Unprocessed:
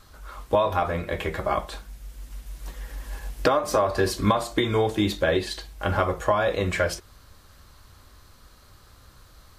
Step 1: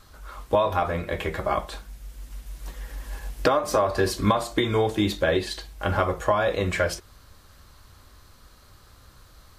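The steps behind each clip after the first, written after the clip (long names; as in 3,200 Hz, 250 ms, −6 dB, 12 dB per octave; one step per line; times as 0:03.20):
no processing that can be heard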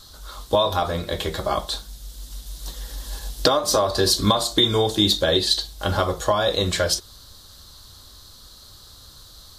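high shelf with overshoot 3,000 Hz +7.5 dB, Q 3
level +2 dB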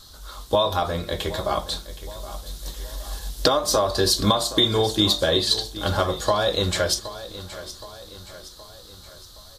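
repeating echo 770 ms, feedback 51%, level −15 dB
level −1 dB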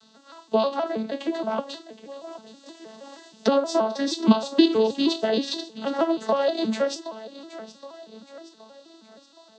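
vocoder with an arpeggio as carrier major triad, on A3, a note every 158 ms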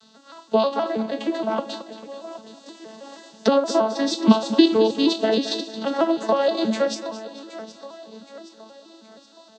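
repeating echo 222 ms, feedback 40%, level −13.5 dB
level +2.5 dB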